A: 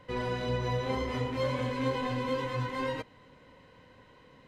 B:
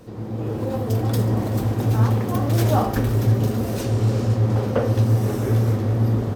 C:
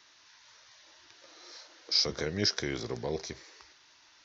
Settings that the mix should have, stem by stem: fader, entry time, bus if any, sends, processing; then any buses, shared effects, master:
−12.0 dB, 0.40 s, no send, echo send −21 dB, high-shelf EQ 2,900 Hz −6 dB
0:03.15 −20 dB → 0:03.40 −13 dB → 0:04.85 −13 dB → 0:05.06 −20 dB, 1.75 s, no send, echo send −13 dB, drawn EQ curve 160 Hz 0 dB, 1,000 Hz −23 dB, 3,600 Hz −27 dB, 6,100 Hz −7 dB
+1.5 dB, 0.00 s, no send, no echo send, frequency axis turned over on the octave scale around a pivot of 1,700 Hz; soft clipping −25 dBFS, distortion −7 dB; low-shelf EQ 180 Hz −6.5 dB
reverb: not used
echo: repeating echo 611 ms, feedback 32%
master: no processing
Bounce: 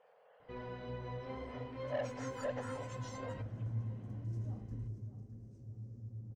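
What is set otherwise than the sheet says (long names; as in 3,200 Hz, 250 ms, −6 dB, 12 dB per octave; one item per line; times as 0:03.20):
stem B −20.0 dB → −27.5 dB
stem C +1.5 dB → −7.0 dB
master: extra high-frequency loss of the air 120 metres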